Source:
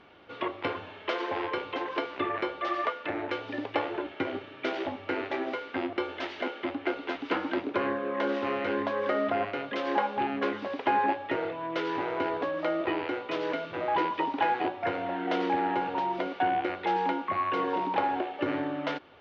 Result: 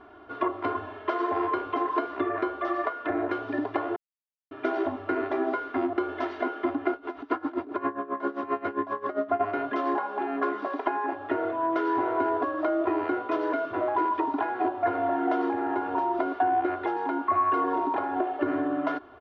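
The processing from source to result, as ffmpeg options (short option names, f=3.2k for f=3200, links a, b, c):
-filter_complex "[0:a]asplit=3[a][b][c];[a]afade=t=out:st=6.93:d=0.02[d];[b]aeval=exprs='val(0)*pow(10,-19*(0.5-0.5*cos(2*PI*7.5*n/s))/20)':c=same,afade=t=in:st=6.93:d=0.02,afade=t=out:st=9.39:d=0.02[e];[c]afade=t=in:st=9.39:d=0.02[f];[d][e][f]amix=inputs=3:normalize=0,asettb=1/sr,asplit=3[g][h][i];[g]atrim=end=9.944[j];[h]atrim=start=9.94:end=11.13,asetpts=PTS-STARTPTS,afade=t=in:d=0.004:c=qsin,afade=t=out:st=1.186:d=0.004:c=qsin,highpass=300[k];[i]atrim=start=11.126[l];[j][k]acrossfade=d=0.004:c1=hsin:c2=qsin[m];[m][l]acrossfade=d=0.004:c1=qsin:c2=hsin,asplit=3[n][o][p];[n]atrim=end=3.96,asetpts=PTS-STARTPTS,afade=t=out:st=3.956:d=0.004:c=hsin[q];[o]atrim=start=3.96:end=4.51,asetpts=PTS-STARTPTS,volume=0[r];[p]atrim=start=4.51,asetpts=PTS-STARTPTS,afade=t=in:d=0.004:c=hsin[s];[q][r][s]concat=n=3:v=0:a=1,acompressor=threshold=-29dB:ratio=6,highshelf=f=1.8k:t=q:w=1.5:g=-10,aecho=1:1:2.9:0.93,volume=2.5dB"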